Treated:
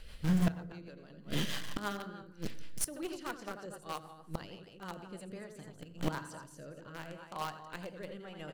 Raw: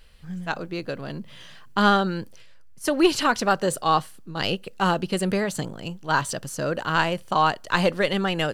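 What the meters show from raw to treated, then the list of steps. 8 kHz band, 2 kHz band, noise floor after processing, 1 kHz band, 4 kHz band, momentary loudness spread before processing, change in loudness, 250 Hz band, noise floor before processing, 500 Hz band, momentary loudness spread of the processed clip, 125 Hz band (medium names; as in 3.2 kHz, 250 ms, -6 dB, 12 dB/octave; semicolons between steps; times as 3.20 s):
-10.0 dB, -19.0 dB, -56 dBFS, -20.5 dB, -16.0 dB, 14 LU, -15.5 dB, -12.0 dB, -44 dBFS, -19.0 dB, 15 LU, -8.5 dB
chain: dynamic bell 3.7 kHz, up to -4 dB, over -38 dBFS, Q 0.87; on a send: loudspeakers at several distances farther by 29 m -7 dB, 80 m -9 dB; on the sum: inverted gate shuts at -24 dBFS, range -25 dB; in parallel at -6 dB: bit crusher 6-bit; on the sum: overload inside the chain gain 24.5 dB; FDN reverb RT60 1.1 s, low-frequency decay 1.4×, high-frequency decay 0.5×, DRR 14 dB; rotary cabinet horn 6.3 Hz, later 0.85 Hz, at 5.08 s; trim +4.5 dB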